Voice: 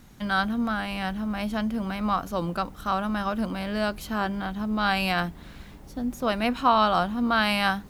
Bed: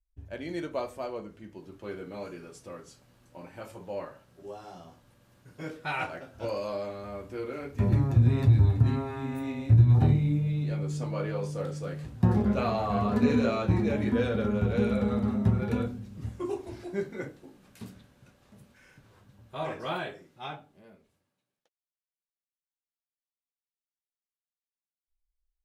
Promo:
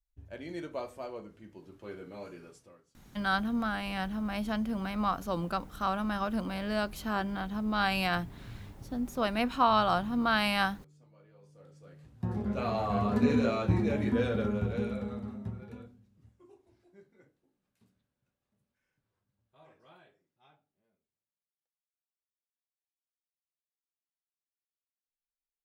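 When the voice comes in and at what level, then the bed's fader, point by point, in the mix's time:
2.95 s, -4.5 dB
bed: 2.49 s -5 dB
3.05 s -28.5 dB
11.29 s -28.5 dB
12.78 s -2 dB
14.41 s -2 dB
16.4 s -25.5 dB

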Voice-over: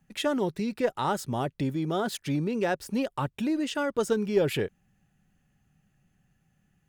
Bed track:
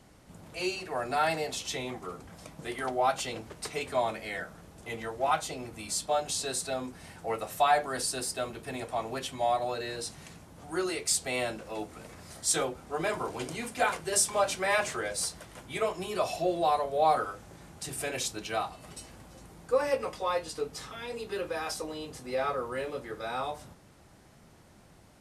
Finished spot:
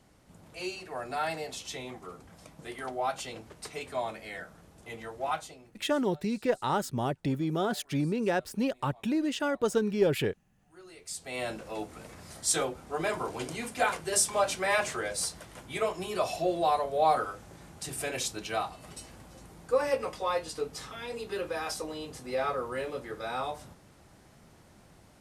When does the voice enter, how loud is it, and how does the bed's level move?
5.65 s, -1.0 dB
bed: 5.35 s -4.5 dB
5.93 s -26.5 dB
10.64 s -26.5 dB
11.52 s 0 dB

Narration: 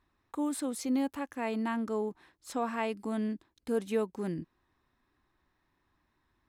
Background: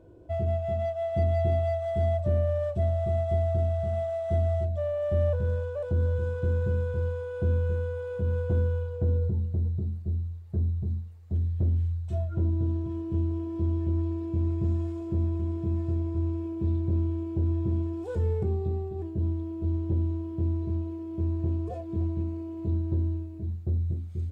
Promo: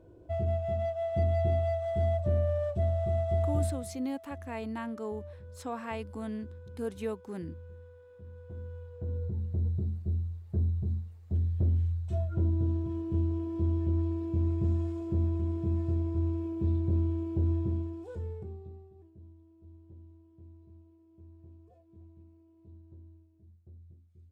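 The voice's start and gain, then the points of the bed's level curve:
3.10 s, -4.5 dB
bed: 3.63 s -2.5 dB
3.99 s -20.5 dB
8.34 s -20.5 dB
9.68 s -1.5 dB
17.54 s -1.5 dB
19.28 s -25 dB

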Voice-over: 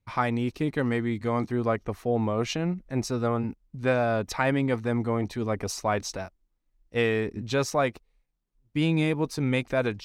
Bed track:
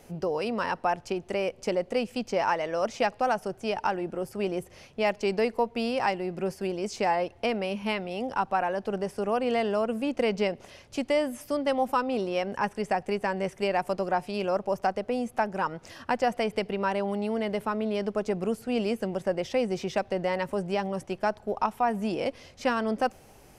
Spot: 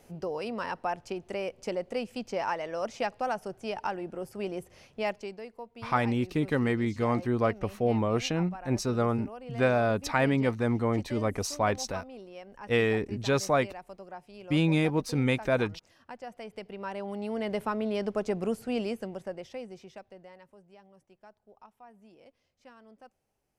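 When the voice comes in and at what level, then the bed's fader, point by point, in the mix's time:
5.75 s, -0.5 dB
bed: 5.1 s -5 dB
5.39 s -17 dB
16.25 s -17 dB
17.54 s -1.5 dB
18.65 s -1.5 dB
20.62 s -27 dB

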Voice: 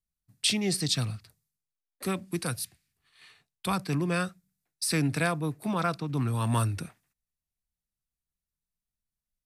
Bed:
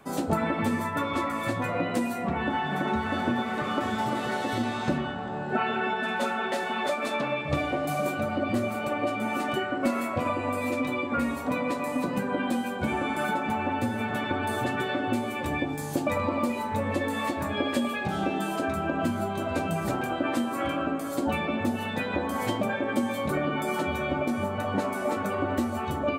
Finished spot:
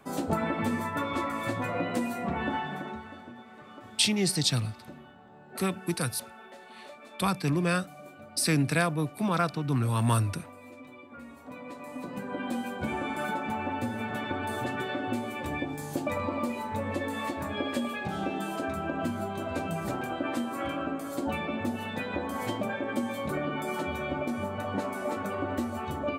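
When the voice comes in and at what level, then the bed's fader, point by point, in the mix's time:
3.55 s, +1.5 dB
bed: 2.54 s -2.5 dB
3.26 s -19.5 dB
11.15 s -19.5 dB
12.6 s -4 dB

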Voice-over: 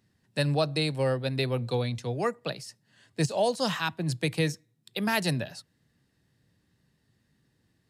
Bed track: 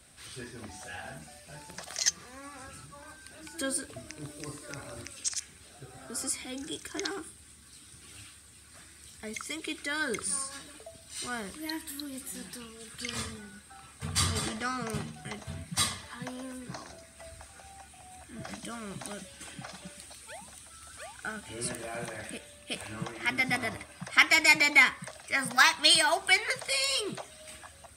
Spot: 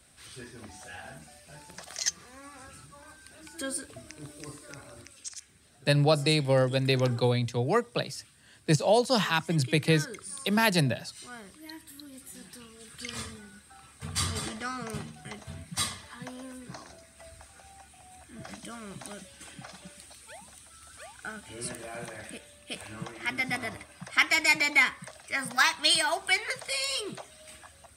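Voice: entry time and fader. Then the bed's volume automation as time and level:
5.50 s, +3.0 dB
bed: 4.52 s -2 dB
5.33 s -8.5 dB
11.87 s -8.5 dB
12.93 s -2 dB

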